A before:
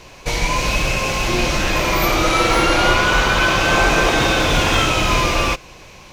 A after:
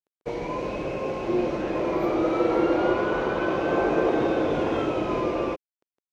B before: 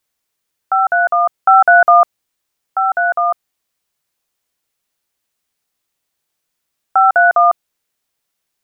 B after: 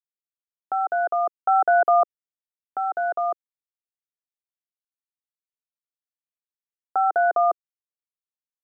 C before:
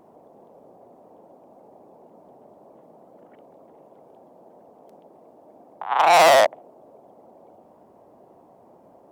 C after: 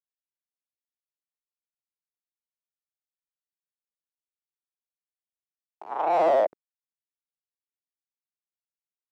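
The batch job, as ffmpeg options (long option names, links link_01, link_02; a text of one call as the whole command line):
ffmpeg -i in.wav -af "agate=range=-33dB:threshold=-40dB:ratio=3:detection=peak,aeval=exprs='val(0)*gte(abs(val(0)),0.0316)':channel_layout=same,bandpass=frequency=390:width_type=q:width=1.6:csg=0" out.wav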